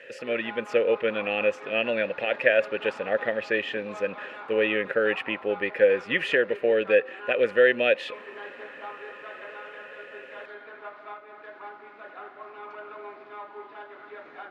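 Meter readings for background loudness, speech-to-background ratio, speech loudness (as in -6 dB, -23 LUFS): -42.5 LUFS, 17.5 dB, -25.0 LUFS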